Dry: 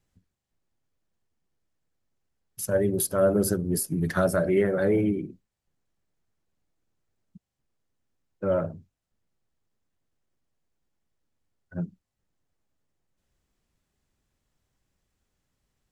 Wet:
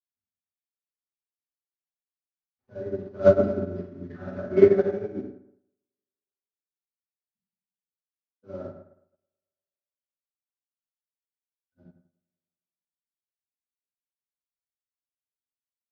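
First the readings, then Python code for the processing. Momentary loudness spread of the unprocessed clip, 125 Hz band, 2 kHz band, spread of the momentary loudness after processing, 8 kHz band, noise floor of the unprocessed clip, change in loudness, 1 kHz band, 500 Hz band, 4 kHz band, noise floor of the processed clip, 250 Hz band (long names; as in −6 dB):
13 LU, −5.5 dB, −6.5 dB, 21 LU, below −30 dB, −84 dBFS, +3.0 dB, −5.0 dB, +2.5 dB, below −10 dB, below −85 dBFS, −3.0 dB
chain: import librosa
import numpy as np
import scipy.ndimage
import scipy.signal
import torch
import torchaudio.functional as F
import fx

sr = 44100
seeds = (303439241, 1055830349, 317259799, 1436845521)

p1 = fx.cvsd(x, sr, bps=32000)
p2 = fx.lowpass(p1, sr, hz=1700.0, slope=6)
p3 = fx.dynamic_eq(p2, sr, hz=280.0, q=2.1, threshold_db=-37.0, ratio=4.0, max_db=3)
p4 = fx.level_steps(p3, sr, step_db=10)
p5 = p4 + fx.echo_single(p4, sr, ms=72, db=-20.5, dry=0)
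p6 = fx.rev_fdn(p5, sr, rt60_s=1.9, lf_ratio=0.75, hf_ratio=0.35, size_ms=24.0, drr_db=-10.0)
y = fx.upward_expand(p6, sr, threshold_db=-40.0, expansion=2.5)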